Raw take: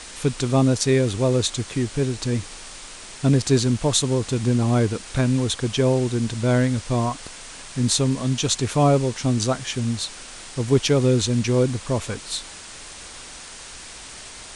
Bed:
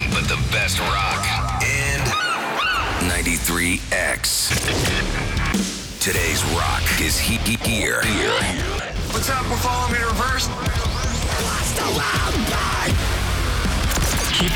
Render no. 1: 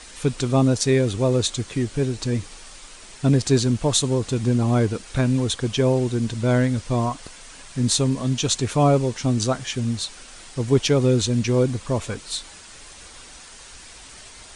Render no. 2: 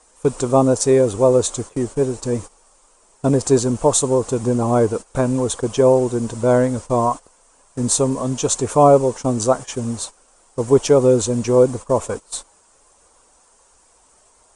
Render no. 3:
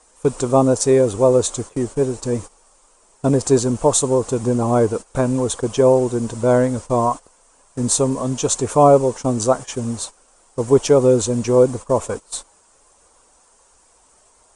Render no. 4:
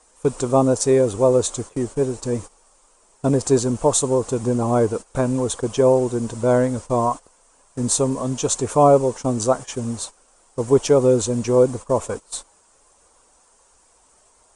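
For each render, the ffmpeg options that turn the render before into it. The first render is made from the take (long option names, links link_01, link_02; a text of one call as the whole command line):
ffmpeg -i in.wav -af "afftdn=noise_reduction=6:noise_floor=-40" out.wav
ffmpeg -i in.wav -af "agate=range=-15dB:threshold=-30dB:ratio=16:detection=peak,equalizer=frequency=125:width_type=o:width=1:gain=-3,equalizer=frequency=500:width_type=o:width=1:gain=8,equalizer=frequency=1000:width_type=o:width=1:gain=9,equalizer=frequency=2000:width_type=o:width=1:gain=-6,equalizer=frequency=4000:width_type=o:width=1:gain=-8,equalizer=frequency=8000:width_type=o:width=1:gain=8" out.wav
ffmpeg -i in.wav -af anull out.wav
ffmpeg -i in.wav -af "volume=-2dB" out.wav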